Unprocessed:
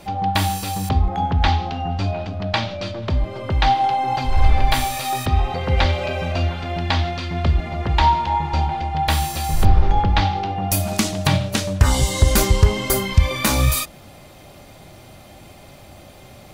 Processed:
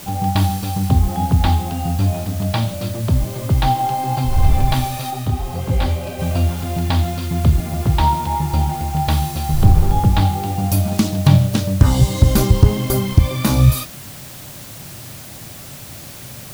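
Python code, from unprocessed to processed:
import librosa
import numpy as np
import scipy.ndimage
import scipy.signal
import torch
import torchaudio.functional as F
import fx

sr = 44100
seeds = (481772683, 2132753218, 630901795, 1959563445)

y = fx.graphic_eq(x, sr, hz=(125, 250, 2000, 8000), db=(11, 4, -6, -5))
y = fx.quant_dither(y, sr, seeds[0], bits=6, dither='triangular')
y = fx.detune_double(y, sr, cents=42, at=(5.1, 6.18), fade=0.02)
y = y * librosa.db_to_amplitude(-1.0)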